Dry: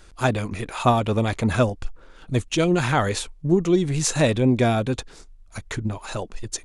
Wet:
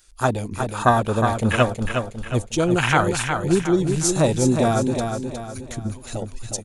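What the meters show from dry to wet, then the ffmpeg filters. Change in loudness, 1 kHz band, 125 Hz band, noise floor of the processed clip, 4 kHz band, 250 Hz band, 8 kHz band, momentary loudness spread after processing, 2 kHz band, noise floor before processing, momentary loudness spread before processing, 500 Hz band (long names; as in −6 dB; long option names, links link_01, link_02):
+1.5 dB, +3.5 dB, +0.5 dB, −40 dBFS, +0.5 dB, +1.0 dB, +3.0 dB, 12 LU, +3.5 dB, −49 dBFS, 13 LU, +1.5 dB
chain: -af "afwtdn=0.0562,aecho=1:1:362|724|1086|1448|1810:0.501|0.21|0.0884|0.0371|0.0156,crystalizer=i=9:c=0,volume=-1dB"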